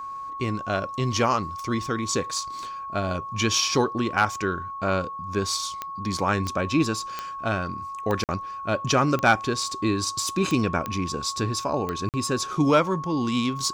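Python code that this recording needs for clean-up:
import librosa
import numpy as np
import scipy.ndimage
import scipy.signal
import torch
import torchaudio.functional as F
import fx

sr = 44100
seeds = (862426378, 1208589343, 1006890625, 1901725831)

y = fx.fix_declick_ar(x, sr, threshold=10.0)
y = fx.notch(y, sr, hz=1100.0, q=30.0)
y = fx.fix_interpolate(y, sr, at_s=(8.24, 12.09), length_ms=48.0)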